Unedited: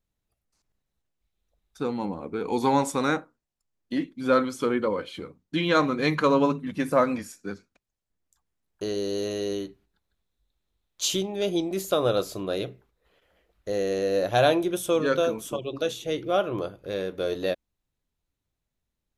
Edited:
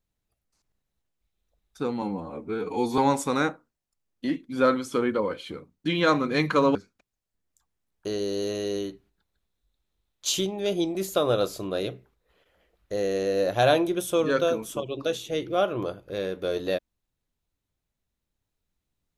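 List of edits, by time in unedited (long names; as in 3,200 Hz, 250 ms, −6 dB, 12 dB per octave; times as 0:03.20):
0:02.02–0:02.66: time-stretch 1.5×
0:06.43–0:07.51: remove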